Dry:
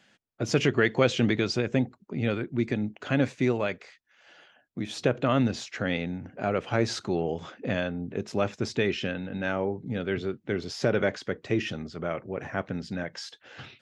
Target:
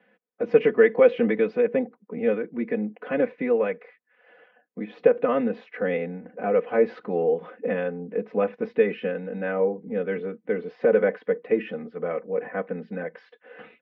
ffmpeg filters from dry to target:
ffmpeg -i in.wav -af "highpass=frequency=170:width=0.5412,highpass=frequency=170:width=1.3066,equalizer=frequency=270:width_type=q:width=4:gain=-9,equalizer=frequency=460:width_type=q:width=4:gain=9,equalizer=frequency=840:width_type=q:width=4:gain=-3,equalizer=frequency=1400:width_type=q:width=4:gain=-5,lowpass=frequency=2100:width=0.5412,lowpass=frequency=2100:width=1.3066,aecho=1:1:4:0.88" out.wav

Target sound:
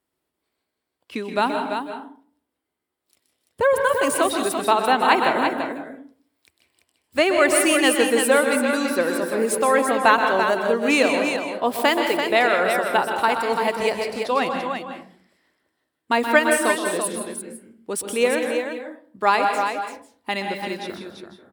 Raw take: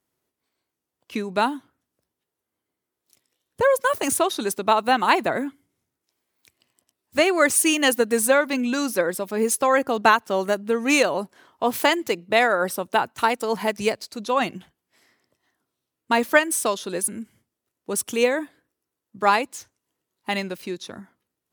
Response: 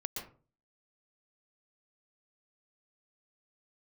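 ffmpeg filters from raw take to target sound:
-filter_complex "[0:a]equalizer=frequency=125:width_type=o:width=0.33:gain=-11,equalizer=frequency=200:width_type=o:width=0.33:gain=-4,equalizer=frequency=6300:width_type=o:width=0.33:gain=-9,equalizer=frequency=12500:width_type=o:width=0.33:gain=-8,aecho=1:1:126|338:0.335|0.473,asplit=2[link_01][link_02];[1:a]atrim=start_sample=2205,asetrate=33075,aresample=44100[link_03];[link_02][link_03]afir=irnorm=-1:irlink=0,volume=-1.5dB[link_04];[link_01][link_04]amix=inputs=2:normalize=0,volume=-4.5dB"

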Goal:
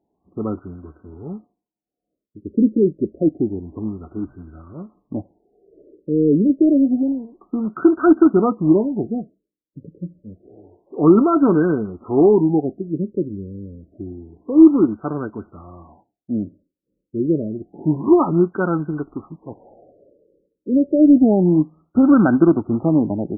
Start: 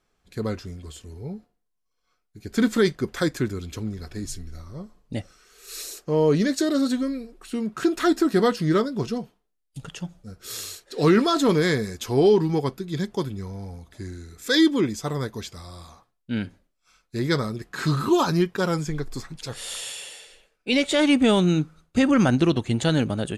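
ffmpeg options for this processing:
ffmpeg -i in.wav -af "highpass=110,equalizer=frequency=130:width_type=q:width=4:gain=-9,equalizer=frequency=310:width_type=q:width=4:gain=6,equalizer=frequency=490:width_type=q:width=4:gain=-7,equalizer=frequency=1000:width_type=q:width=4:gain=-4,equalizer=frequency=2100:width_type=q:width=4:gain=-5,equalizer=frequency=4500:width_type=q:width=4:gain=-4,lowpass=frequency=8200:width=0.5412,lowpass=frequency=8200:width=1.3066,acrusher=bits=4:mode=log:mix=0:aa=0.000001,afftfilt=real='re*lt(b*sr/1024,560*pow(1600/560,0.5+0.5*sin(2*PI*0.28*pts/sr)))':imag='im*lt(b*sr/1024,560*pow(1600/560,0.5+0.5*sin(2*PI*0.28*pts/sr)))':win_size=1024:overlap=0.75,volume=5dB" out.wav

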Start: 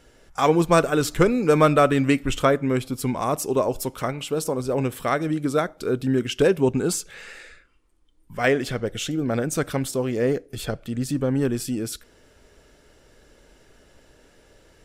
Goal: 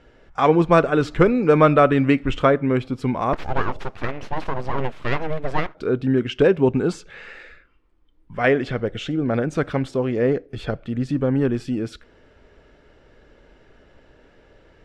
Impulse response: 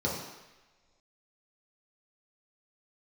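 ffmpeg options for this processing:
-filter_complex "[0:a]asettb=1/sr,asplit=3[link_01][link_02][link_03];[link_01]atrim=end=3.334[link_04];[link_02]atrim=start=3.33:end=5.75,asetpts=PTS-STARTPTS,afade=type=in:duration=0.004:curve=qsin,afade=type=out:start_time=2.416:duration=0.004:curve=qsin,aeval=exprs='abs(val(0))':channel_layout=same[link_05];[link_03]atrim=start=5.746[link_06];[link_04][link_05]acrossfade=duration=0.004:curve1=hsin:curve2=qsin[link_07];[link_07][link_06]acrossfade=duration=0.004:curve1=qsin:curve2=hsin,lowpass=2800,volume=2.5dB"

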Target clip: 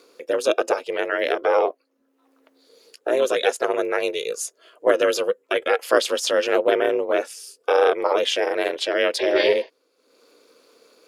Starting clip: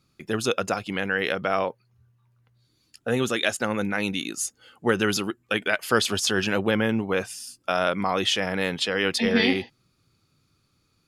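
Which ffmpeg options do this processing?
ffmpeg -i in.wav -af "acompressor=mode=upward:threshold=-42dB:ratio=2.5,aeval=exprs='val(0)*sin(2*PI*150*n/s)':channel_layout=same,highpass=frequency=480:width_type=q:width=4.9,volume=2dB" out.wav

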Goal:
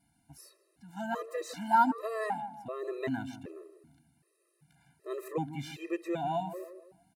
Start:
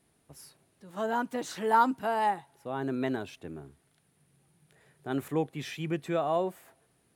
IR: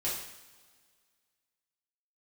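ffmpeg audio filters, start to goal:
-filter_complex "[0:a]asuperstop=centerf=3300:order=4:qfactor=7.5,asplit=2[link_01][link_02];[link_02]adelay=157,lowpass=frequency=960:poles=1,volume=-10dB,asplit=2[link_03][link_04];[link_04]adelay=157,lowpass=frequency=960:poles=1,volume=0.46,asplit=2[link_05][link_06];[link_06]adelay=157,lowpass=frequency=960:poles=1,volume=0.46,asplit=2[link_07][link_08];[link_08]adelay=157,lowpass=frequency=960:poles=1,volume=0.46,asplit=2[link_09][link_10];[link_10]adelay=157,lowpass=frequency=960:poles=1,volume=0.46[link_11];[link_01][link_03][link_05][link_07][link_09][link_11]amix=inputs=6:normalize=0,afftfilt=real='re*gt(sin(2*PI*1.3*pts/sr)*(1-2*mod(floor(b*sr/1024/340),2)),0)':imag='im*gt(sin(2*PI*1.3*pts/sr)*(1-2*mod(floor(b*sr/1024/340),2)),0)':win_size=1024:overlap=0.75"

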